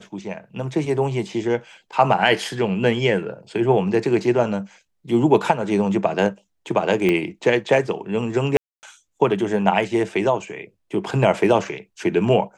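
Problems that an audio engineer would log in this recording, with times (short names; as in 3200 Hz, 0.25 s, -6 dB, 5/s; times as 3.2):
7.09 pop -9 dBFS
8.57–8.83 gap 0.259 s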